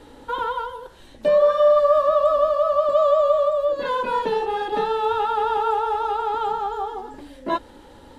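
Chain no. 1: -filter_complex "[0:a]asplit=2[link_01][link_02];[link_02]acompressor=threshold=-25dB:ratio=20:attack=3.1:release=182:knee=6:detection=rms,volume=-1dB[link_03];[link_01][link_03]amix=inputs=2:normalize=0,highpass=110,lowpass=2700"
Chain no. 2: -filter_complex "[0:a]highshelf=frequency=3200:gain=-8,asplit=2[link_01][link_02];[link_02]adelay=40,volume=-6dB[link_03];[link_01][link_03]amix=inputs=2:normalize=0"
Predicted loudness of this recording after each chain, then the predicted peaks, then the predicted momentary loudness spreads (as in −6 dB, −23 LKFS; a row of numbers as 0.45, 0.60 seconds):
−19.0, −20.5 LKFS; −6.0, −7.0 dBFS; 12, 13 LU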